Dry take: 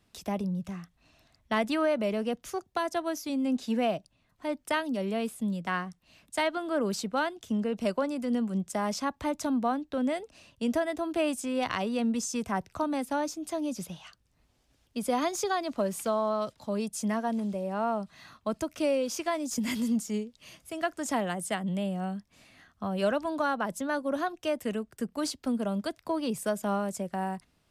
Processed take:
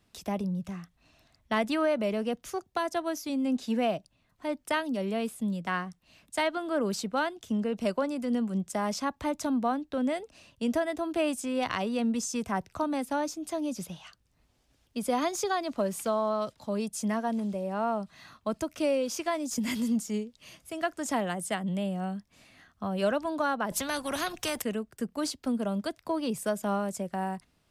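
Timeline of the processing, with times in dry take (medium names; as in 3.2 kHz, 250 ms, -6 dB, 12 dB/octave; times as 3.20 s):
23.71–24.62 s: spectrum-flattening compressor 2:1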